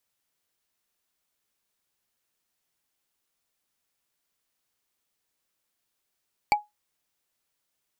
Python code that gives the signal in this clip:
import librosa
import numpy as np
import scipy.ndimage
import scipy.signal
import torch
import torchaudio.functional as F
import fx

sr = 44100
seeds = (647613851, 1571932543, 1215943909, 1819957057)

y = fx.strike_wood(sr, length_s=0.45, level_db=-13.5, body='bar', hz=835.0, decay_s=0.18, tilt_db=4.5, modes=5)